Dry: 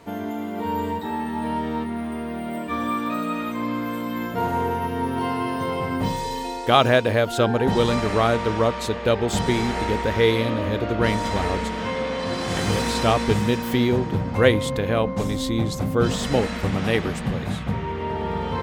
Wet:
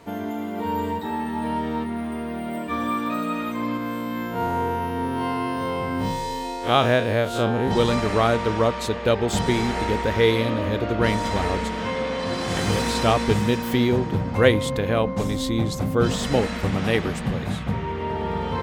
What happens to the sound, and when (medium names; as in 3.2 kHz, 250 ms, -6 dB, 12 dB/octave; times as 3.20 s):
3.77–7.71 s: spectral blur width 81 ms